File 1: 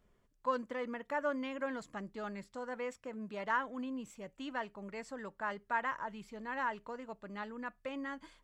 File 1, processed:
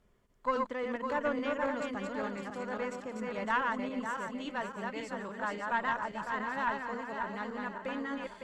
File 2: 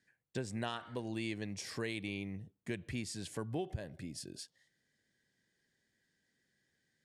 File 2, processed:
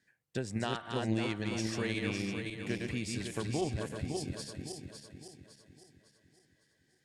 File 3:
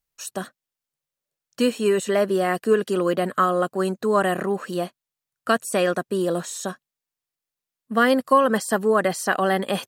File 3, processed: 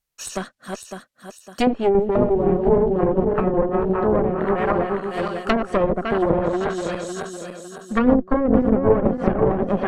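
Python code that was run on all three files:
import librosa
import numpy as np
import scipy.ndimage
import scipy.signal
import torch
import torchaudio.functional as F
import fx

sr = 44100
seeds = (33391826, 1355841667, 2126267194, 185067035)

y = fx.reverse_delay_fb(x, sr, ms=278, feedback_pct=63, wet_db=-3)
y = fx.cheby_harmonics(y, sr, harmonics=(4, 5), levels_db=(-7, -34), full_scale_db=-4.0)
y = fx.env_lowpass_down(y, sr, base_hz=500.0, full_db=-13.5)
y = y * librosa.db_to_amplitude(1.5)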